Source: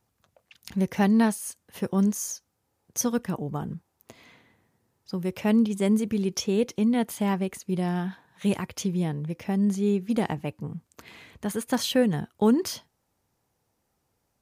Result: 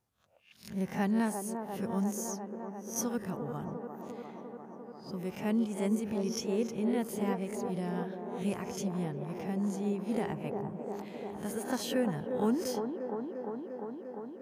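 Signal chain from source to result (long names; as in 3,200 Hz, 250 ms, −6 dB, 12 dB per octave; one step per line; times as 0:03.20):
peak hold with a rise ahead of every peak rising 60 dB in 0.33 s
dynamic equaliser 3,700 Hz, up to −6 dB, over −50 dBFS, Q 2.5
delay with a band-pass on its return 349 ms, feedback 80%, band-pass 570 Hz, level −3.5 dB
level −9 dB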